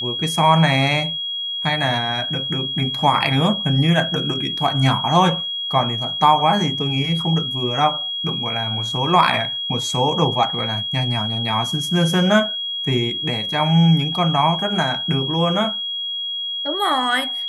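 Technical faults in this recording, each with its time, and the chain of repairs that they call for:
whistle 3,300 Hz −23 dBFS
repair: notch filter 3,300 Hz, Q 30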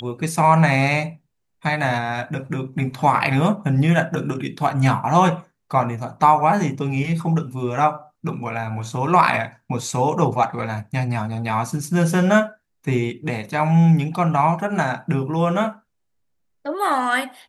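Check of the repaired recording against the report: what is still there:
none of them is left

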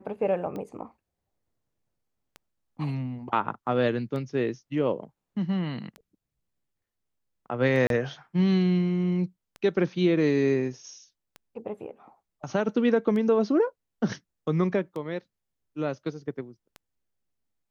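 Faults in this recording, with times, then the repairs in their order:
scratch tick 33 1/3 rpm −25 dBFS
0:07.87–0:07.90: drop-out 32 ms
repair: click removal
repair the gap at 0:07.87, 32 ms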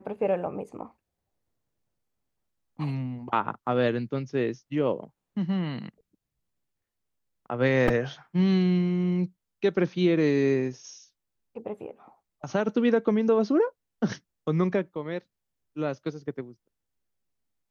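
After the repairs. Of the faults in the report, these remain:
none of them is left

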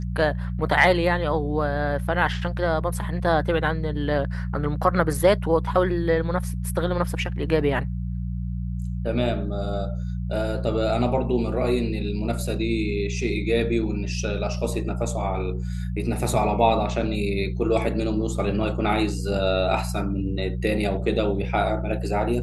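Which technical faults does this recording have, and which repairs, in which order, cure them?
mains hum 60 Hz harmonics 3 −28 dBFS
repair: hum removal 60 Hz, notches 3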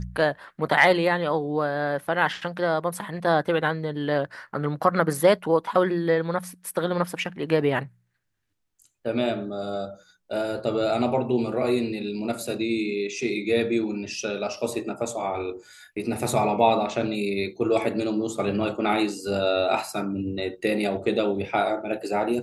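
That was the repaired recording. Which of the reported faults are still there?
none of them is left

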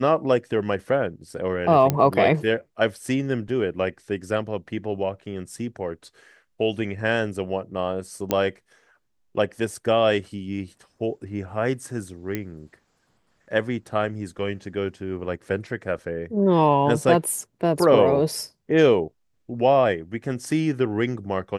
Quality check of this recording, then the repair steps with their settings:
0:01.90: click −7 dBFS
0:08.31: click −7 dBFS
0:12.35: click −13 dBFS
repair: click removal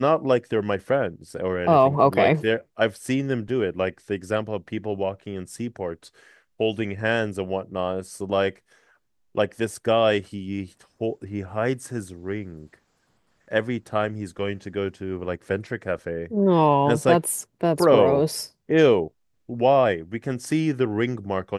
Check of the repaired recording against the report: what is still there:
none of them is left

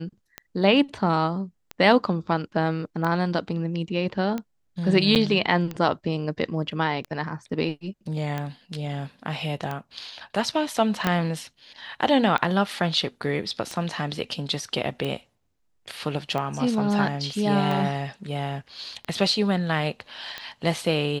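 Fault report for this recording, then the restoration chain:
scratch tick 45 rpm −17 dBFS
0:05.15–0:05.16: drop-out 8.4 ms
0:11.07: click −8 dBFS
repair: click removal
repair the gap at 0:05.15, 8.4 ms

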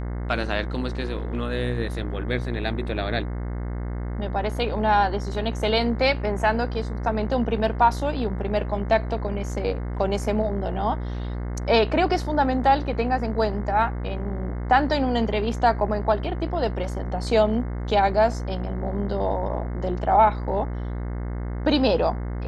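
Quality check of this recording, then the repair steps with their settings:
mains buzz 60 Hz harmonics 36 −29 dBFS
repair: hum removal 60 Hz, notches 36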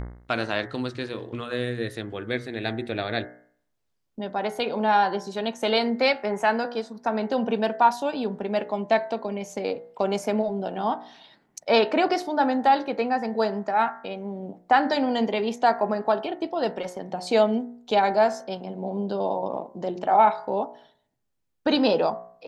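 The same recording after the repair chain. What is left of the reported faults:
none of them is left

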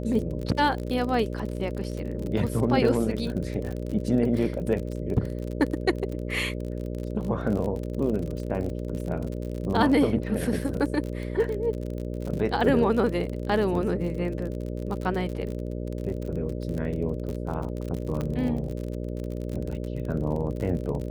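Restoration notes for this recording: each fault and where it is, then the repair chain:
mains buzz 60 Hz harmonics 10 −32 dBFS
surface crackle 40 per second −31 dBFS
0:18.21: click −18 dBFS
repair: click removal
hum removal 60 Hz, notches 10

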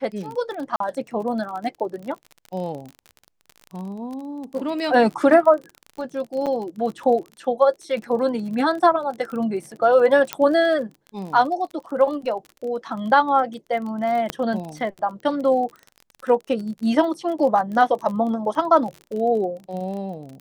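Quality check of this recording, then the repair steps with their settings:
surface crackle 31 per second −30 dBFS
0:00.76–0:00.80: drop-out 43 ms
0:06.46–0:06.47: drop-out 6.8 ms
0:10.33: click −6 dBFS
0:14.30: click −9 dBFS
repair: click removal
repair the gap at 0:00.76, 43 ms
repair the gap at 0:06.46, 6.8 ms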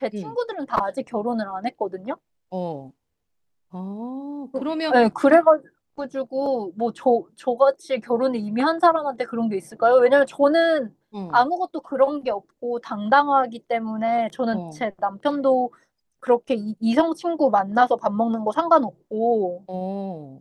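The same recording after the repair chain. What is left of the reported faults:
0:14.30: click

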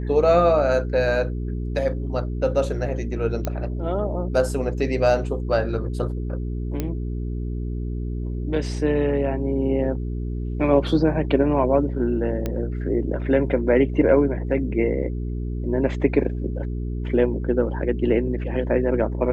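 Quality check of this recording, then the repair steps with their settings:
mains hum 60 Hz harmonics 7 −27 dBFS
0:03.45: click −12 dBFS
0:06.80: click −12 dBFS
0:12.46: click −13 dBFS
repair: click removal
hum removal 60 Hz, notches 7

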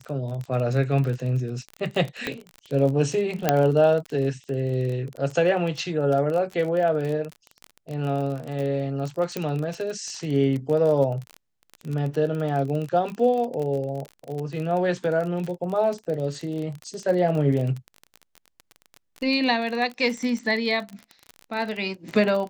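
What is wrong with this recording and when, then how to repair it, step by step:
surface crackle 27 per second −28 dBFS
0:02.27: click −13 dBFS
0:03.49: click −4 dBFS
0:09.37: click −13 dBFS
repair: click removal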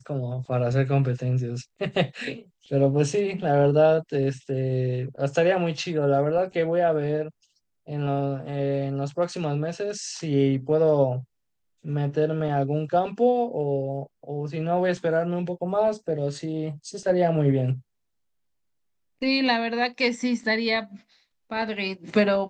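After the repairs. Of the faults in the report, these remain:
0:02.27: click

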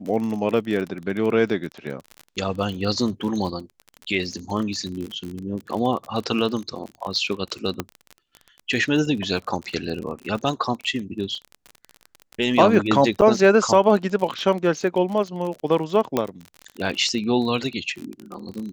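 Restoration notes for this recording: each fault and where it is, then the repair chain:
surface crackle 37 per second −28 dBFS
0:07.80: click −10 dBFS
0:13.21–0:13.22: drop-out 8.9 ms
0:16.17: click −8 dBFS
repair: click removal
repair the gap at 0:13.21, 8.9 ms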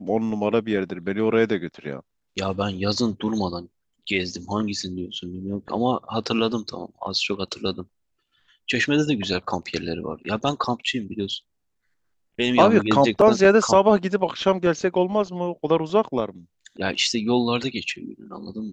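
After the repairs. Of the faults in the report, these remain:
none of them is left

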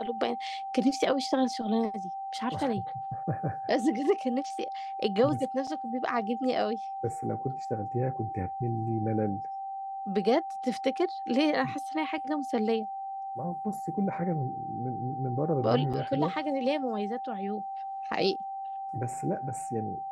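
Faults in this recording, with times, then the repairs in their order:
whistle 780 Hz −34 dBFS
0:05.67: drop-out 5 ms
0:15.93–0:15.94: drop-out 6.5 ms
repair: notch filter 780 Hz, Q 30
repair the gap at 0:05.67, 5 ms
repair the gap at 0:15.93, 6.5 ms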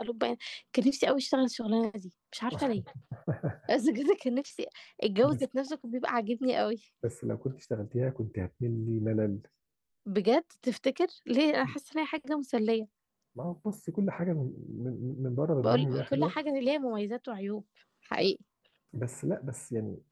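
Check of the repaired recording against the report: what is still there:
none of them is left

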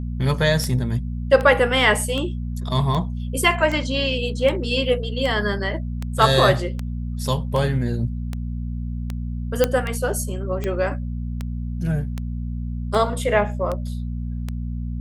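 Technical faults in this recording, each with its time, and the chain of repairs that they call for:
mains hum 60 Hz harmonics 4 −27 dBFS
scratch tick 78 rpm −14 dBFS
0:09.64: click −3 dBFS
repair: click removal
hum removal 60 Hz, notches 4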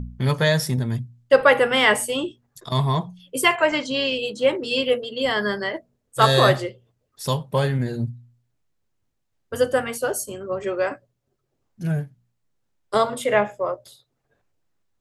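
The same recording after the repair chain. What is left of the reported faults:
none of them is left

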